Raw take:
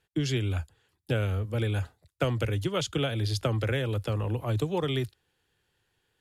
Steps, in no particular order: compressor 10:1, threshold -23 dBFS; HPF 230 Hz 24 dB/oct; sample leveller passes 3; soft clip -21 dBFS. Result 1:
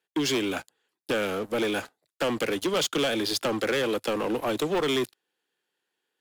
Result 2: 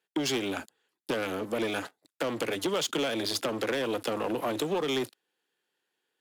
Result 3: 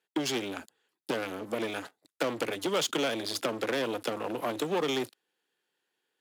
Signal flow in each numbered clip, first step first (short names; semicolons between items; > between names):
compressor > HPF > sample leveller > soft clip; sample leveller > HPF > compressor > soft clip; sample leveller > compressor > soft clip > HPF